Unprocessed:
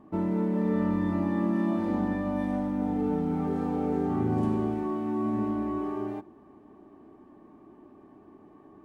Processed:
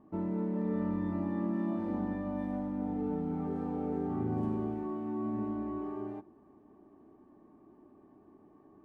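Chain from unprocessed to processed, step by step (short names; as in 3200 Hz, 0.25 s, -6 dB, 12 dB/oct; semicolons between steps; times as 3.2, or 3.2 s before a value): high shelf 2200 Hz -9.5 dB; gain -6 dB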